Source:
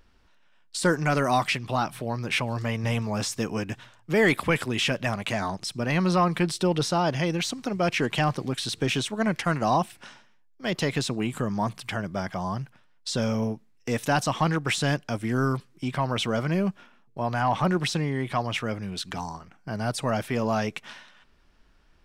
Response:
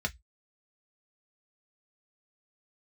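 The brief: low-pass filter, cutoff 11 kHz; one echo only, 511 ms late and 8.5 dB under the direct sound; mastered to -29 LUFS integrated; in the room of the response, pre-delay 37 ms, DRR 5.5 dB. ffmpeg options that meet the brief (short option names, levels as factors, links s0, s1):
-filter_complex "[0:a]lowpass=11000,aecho=1:1:511:0.376,asplit=2[s0][s1];[1:a]atrim=start_sample=2205,adelay=37[s2];[s1][s2]afir=irnorm=-1:irlink=0,volume=0.299[s3];[s0][s3]amix=inputs=2:normalize=0,volume=0.631"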